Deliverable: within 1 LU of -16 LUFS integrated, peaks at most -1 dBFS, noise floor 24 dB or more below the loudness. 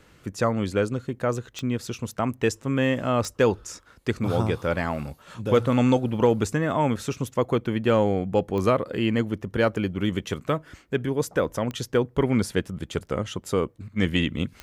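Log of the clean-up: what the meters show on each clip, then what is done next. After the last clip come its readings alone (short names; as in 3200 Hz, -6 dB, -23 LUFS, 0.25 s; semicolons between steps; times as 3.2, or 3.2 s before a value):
clicks 5; loudness -25.5 LUFS; peak -9.5 dBFS; loudness target -16.0 LUFS
-> de-click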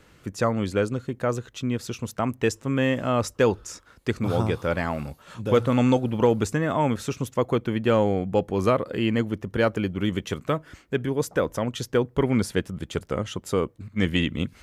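clicks 0; loudness -25.5 LUFS; peak -9.5 dBFS; loudness target -16.0 LUFS
-> gain +9.5 dB; limiter -1 dBFS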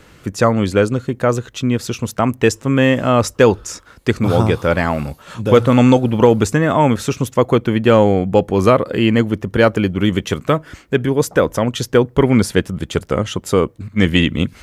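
loudness -16.0 LUFS; peak -1.0 dBFS; noise floor -46 dBFS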